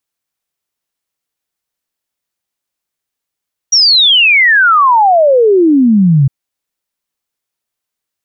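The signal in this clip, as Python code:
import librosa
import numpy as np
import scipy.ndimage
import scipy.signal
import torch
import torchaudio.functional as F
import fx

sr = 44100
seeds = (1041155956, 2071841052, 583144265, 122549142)

y = fx.ess(sr, length_s=2.56, from_hz=5800.0, to_hz=130.0, level_db=-4.5)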